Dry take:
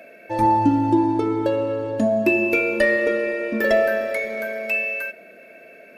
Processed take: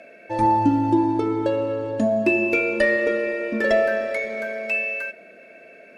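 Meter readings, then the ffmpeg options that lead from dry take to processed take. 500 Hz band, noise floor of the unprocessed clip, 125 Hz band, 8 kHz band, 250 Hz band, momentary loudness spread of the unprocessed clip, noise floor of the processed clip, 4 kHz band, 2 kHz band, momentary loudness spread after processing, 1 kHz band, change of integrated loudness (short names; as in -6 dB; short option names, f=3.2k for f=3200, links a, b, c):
-1.0 dB, -46 dBFS, -1.0 dB, n/a, -1.0 dB, 7 LU, -47 dBFS, -1.0 dB, -1.0 dB, 7 LU, -1.0 dB, -1.0 dB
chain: -af "lowpass=f=9.6k:w=0.5412,lowpass=f=9.6k:w=1.3066,volume=-1dB"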